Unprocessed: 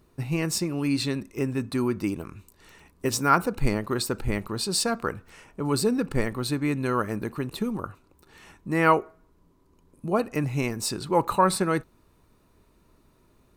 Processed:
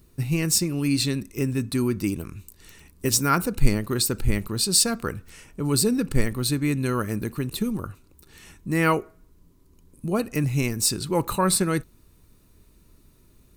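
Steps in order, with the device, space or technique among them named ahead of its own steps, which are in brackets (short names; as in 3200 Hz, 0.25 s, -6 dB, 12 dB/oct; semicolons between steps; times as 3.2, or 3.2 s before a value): smiley-face EQ (low shelf 110 Hz +6 dB; bell 850 Hz -8 dB 1.7 oct; high shelf 6000 Hz +9 dB); gain +2.5 dB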